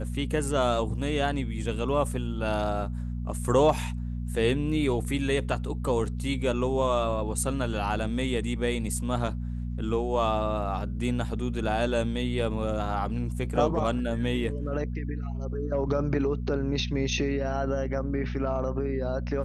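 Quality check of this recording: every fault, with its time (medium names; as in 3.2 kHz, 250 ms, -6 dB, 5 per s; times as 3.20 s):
hum 60 Hz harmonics 4 -32 dBFS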